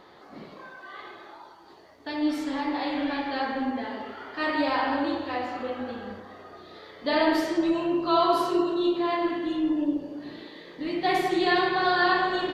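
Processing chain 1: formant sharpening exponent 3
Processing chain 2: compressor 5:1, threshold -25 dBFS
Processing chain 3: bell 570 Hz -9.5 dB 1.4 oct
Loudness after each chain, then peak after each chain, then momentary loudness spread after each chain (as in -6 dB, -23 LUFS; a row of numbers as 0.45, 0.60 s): -26.5, -30.0, -30.0 LUFS; -10.0, -16.0, -13.5 dBFS; 20, 16, 20 LU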